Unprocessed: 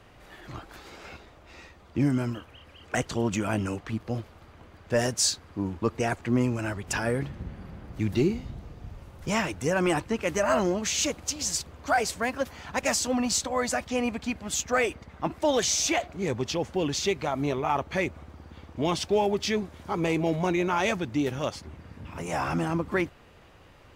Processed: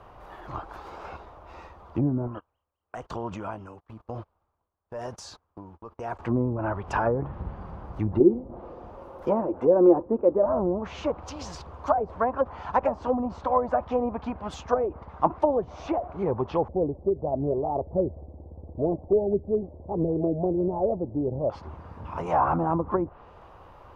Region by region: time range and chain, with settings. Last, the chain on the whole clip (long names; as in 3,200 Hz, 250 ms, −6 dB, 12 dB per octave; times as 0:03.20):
0:02.27–0:06.19: noise gate −38 dBFS, range −27 dB + downward compressor 4 to 1, threshold −32 dBFS + amplitude tremolo 1 Hz, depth 76%
0:08.20–0:10.46: bass and treble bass −12 dB, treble −3 dB + hollow resonant body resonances 250/350/510 Hz, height 12 dB
0:16.68–0:21.50: Butterworth low-pass 640 Hz + phase shifter 1.5 Hz, delay 4 ms, feedback 24%
whole clip: high-shelf EQ 3,500 Hz −6.5 dB; treble cut that deepens with the level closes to 440 Hz, closed at −22 dBFS; octave-band graphic EQ 125/250/1,000/2,000/4,000/8,000 Hz −4/−6/+9/−9/−5/−10 dB; level +5 dB